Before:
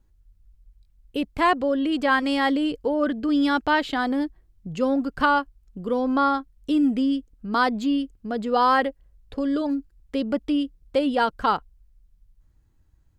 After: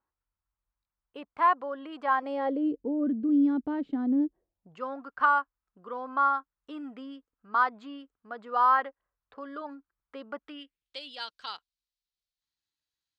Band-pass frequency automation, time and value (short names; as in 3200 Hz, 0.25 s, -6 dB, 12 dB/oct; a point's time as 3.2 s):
band-pass, Q 2.5
2.02 s 1100 Hz
2.89 s 250 Hz
4.11 s 250 Hz
4.8 s 1200 Hz
10.38 s 1200 Hz
10.99 s 4100 Hz